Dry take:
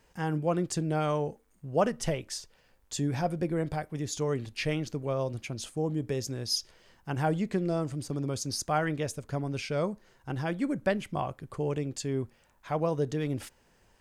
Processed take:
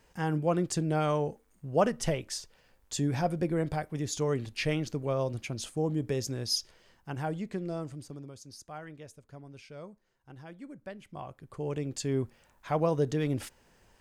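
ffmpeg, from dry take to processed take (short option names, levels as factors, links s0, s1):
-af "volume=7.5,afade=t=out:st=6.43:d=0.84:silence=0.473151,afade=t=out:st=7.86:d=0.48:silence=0.334965,afade=t=in:st=10.96:d=0.59:silence=0.316228,afade=t=in:st=11.55:d=0.58:silence=0.446684"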